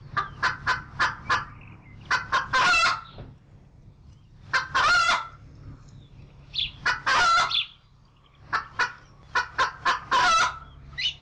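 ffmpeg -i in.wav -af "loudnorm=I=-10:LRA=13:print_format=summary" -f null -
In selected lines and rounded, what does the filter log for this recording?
Input Integrated:    -24.2 LUFS
Input True Peak:     -15.7 dBTP
Input LRA:             1.5 LU
Input Threshold:     -35.6 LUFS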